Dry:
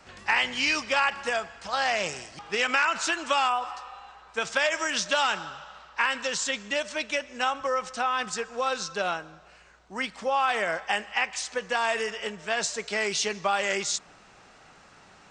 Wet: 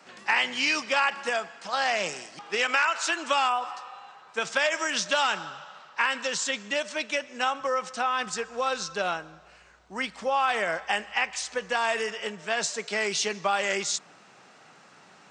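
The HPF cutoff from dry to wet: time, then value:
HPF 24 dB/oct
2.37 s 160 Hz
3.03 s 480 Hz
3.29 s 120 Hz
7.77 s 120 Hz
8.53 s 48 Hz
11.63 s 48 Hz
12.73 s 130 Hz

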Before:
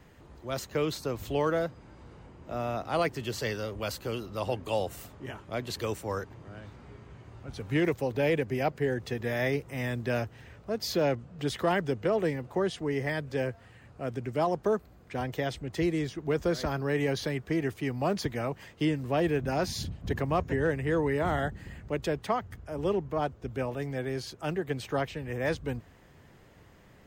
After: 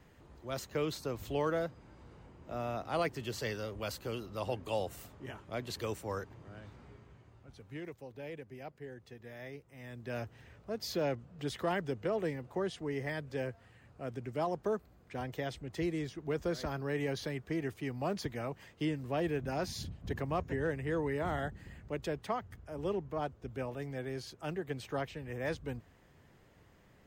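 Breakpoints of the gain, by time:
6.82 s -5 dB
7.84 s -18 dB
9.77 s -18 dB
10.28 s -6.5 dB

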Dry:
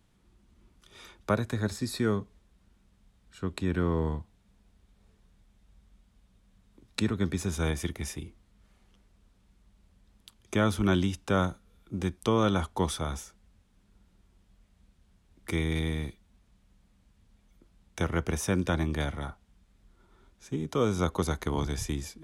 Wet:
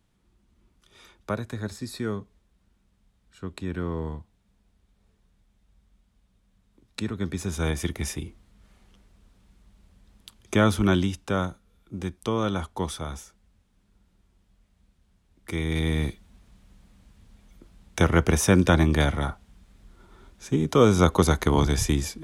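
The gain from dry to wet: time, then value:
7.02 s -2.5 dB
8.02 s +5.5 dB
10.68 s +5.5 dB
11.5 s -1 dB
15.5 s -1 dB
16.08 s +9 dB

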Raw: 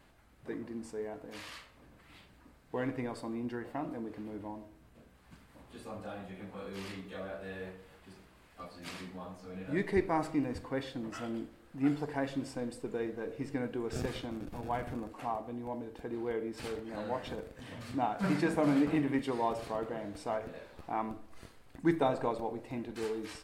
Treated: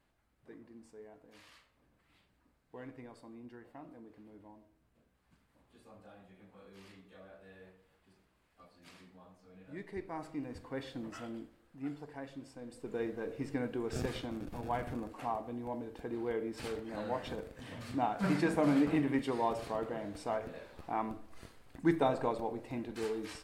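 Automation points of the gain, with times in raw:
9.95 s -13 dB
10.99 s -2.5 dB
11.91 s -11 dB
12.59 s -11 dB
13 s -0.5 dB

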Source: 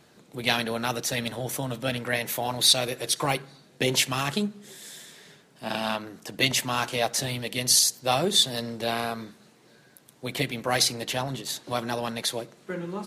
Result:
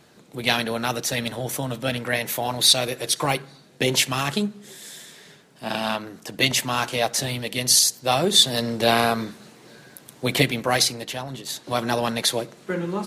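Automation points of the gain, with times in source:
8.15 s +3 dB
8.9 s +9.5 dB
10.34 s +9.5 dB
11.22 s -3 dB
11.91 s +6.5 dB

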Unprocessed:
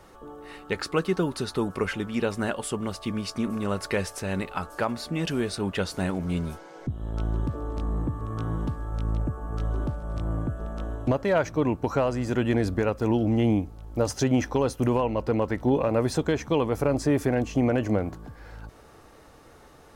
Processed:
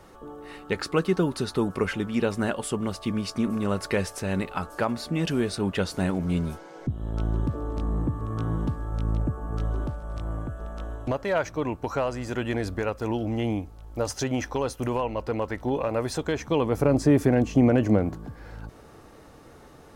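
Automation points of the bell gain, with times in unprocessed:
bell 190 Hz 2.6 oct
9.57 s +2.5 dB
10.09 s -6 dB
16.18 s -6 dB
16.89 s +5 dB

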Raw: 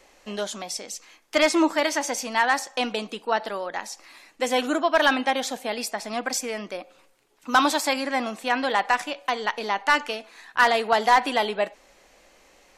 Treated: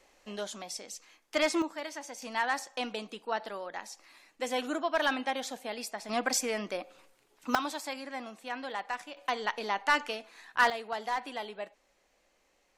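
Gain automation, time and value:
-8 dB
from 1.62 s -16 dB
from 2.22 s -9 dB
from 6.09 s -2 dB
from 7.55 s -14 dB
from 9.17 s -6 dB
from 10.7 s -15 dB

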